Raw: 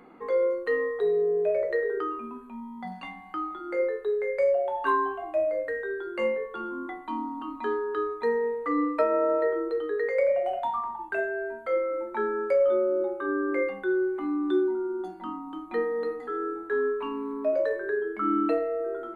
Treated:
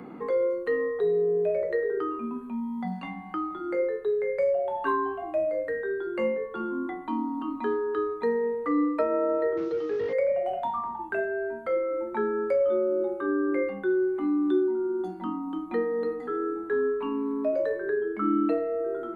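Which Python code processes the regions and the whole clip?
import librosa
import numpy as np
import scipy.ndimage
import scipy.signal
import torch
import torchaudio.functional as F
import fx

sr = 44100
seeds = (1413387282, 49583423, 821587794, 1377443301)

y = fx.chain(x, sr, fx.delta_mod(bps=32000, step_db=-46.5),
    fx.highpass(hz=160.0, slope=6),
    fx.air_absorb(metres=56.0), at=(9.57, 10.13))
y = fx.peak_eq(y, sr, hz=150.0, db=11.5, octaves=2.2)
y = fx.band_squash(y, sr, depth_pct=40)
y = F.gain(torch.from_numpy(y), -3.5).numpy()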